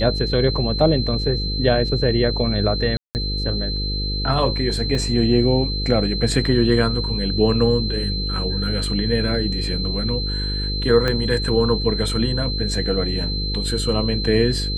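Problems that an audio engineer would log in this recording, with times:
mains buzz 50 Hz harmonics 10 −25 dBFS
whistle 4,100 Hz −26 dBFS
0:02.97–0:03.15: drop-out 179 ms
0:04.95: drop-out 2.5 ms
0:11.08: click −9 dBFS

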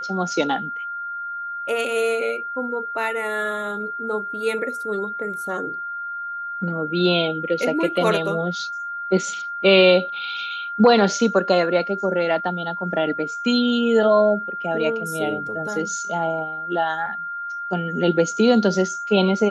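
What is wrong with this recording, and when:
whistle 1,400 Hz −27 dBFS

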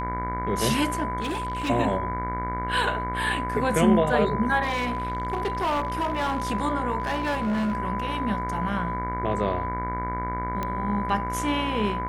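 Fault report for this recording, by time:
mains buzz 60 Hz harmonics 38 −32 dBFS
whistle 1,000 Hz −29 dBFS
0:01.20–0:01.70: clipping −25 dBFS
0:04.62–0:06.51: clipping −22 dBFS
0:07.00–0:07.74: clipping −22.5 dBFS
0:10.63: click −15 dBFS

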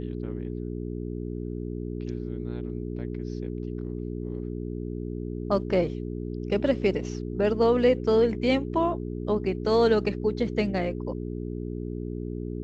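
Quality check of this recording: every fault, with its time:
mains hum 60 Hz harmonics 7 −33 dBFS

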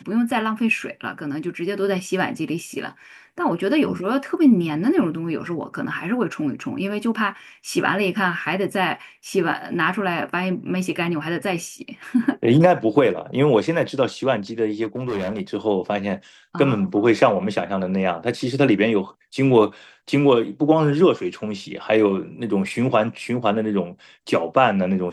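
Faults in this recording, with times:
0:14.83–0:15.41: clipping −21.5 dBFS

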